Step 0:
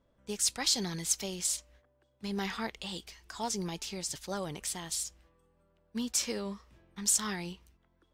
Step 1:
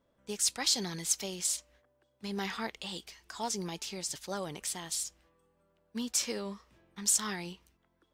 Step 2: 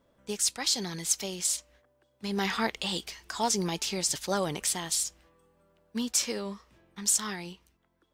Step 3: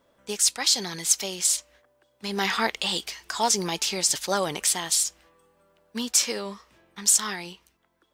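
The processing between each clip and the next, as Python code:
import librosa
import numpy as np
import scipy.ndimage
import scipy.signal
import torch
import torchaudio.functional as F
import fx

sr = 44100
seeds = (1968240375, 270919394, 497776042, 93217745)

y1 = fx.low_shelf(x, sr, hz=100.0, db=-10.5)
y2 = fx.rider(y1, sr, range_db=4, speed_s=0.5)
y2 = F.gain(torch.from_numpy(y2), 4.5).numpy()
y3 = fx.low_shelf(y2, sr, hz=310.0, db=-9.5)
y3 = F.gain(torch.from_numpy(y3), 6.0).numpy()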